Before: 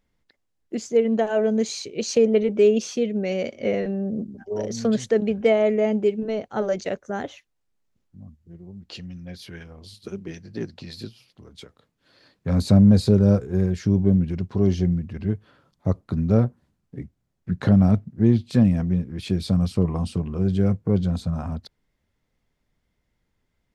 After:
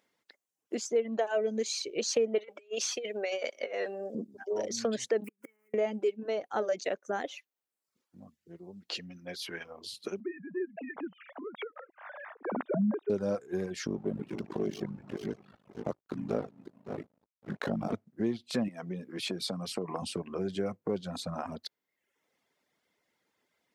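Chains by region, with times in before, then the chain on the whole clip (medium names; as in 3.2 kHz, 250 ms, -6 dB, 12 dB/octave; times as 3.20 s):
2.38–4.15 s: high-pass 570 Hz + compressor with a negative ratio -31 dBFS, ratio -0.5
5.24–5.74 s: block-companded coder 5-bit + inverted gate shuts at -15 dBFS, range -35 dB + static phaser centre 1.6 kHz, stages 4
10.20–13.10 s: formants replaced by sine waves + low-pass 1.8 kHz 24 dB/octave + upward compressor, threshold -31 dBFS
13.86–17.93 s: backward echo that repeats 282 ms, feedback 41%, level -8.5 dB + ring modulator 26 Hz + hysteresis with a dead band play -41 dBFS
18.68–20.02 s: high-pass 110 Hz 24 dB/octave + compression, threshold -22 dBFS
whole clip: reverb removal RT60 0.73 s; high-pass 360 Hz 12 dB/octave; compression 2:1, threshold -38 dBFS; trim +4 dB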